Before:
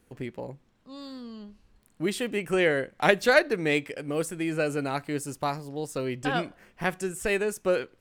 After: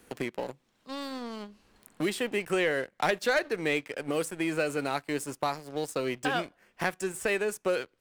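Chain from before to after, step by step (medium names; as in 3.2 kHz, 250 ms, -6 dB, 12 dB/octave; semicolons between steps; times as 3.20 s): bass shelf 210 Hz -10 dB; waveshaping leveller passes 2; three bands compressed up and down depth 70%; trim -8 dB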